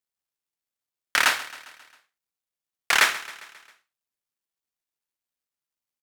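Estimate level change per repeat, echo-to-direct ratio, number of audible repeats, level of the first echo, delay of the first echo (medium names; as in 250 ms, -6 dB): -5.0 dB, -15.5 dB, 4, -17.0 dB, 134 ms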